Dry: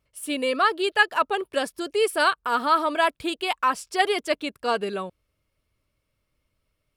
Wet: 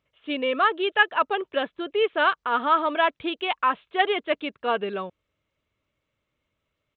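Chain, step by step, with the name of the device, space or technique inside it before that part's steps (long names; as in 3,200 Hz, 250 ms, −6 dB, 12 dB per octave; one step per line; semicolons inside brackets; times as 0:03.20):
Bluetooth headset (high-pass filter 140 Hz 6 dB per octave; downsampling to 8,000 Hz; SBC 64 kbit/s 16,000 Hz)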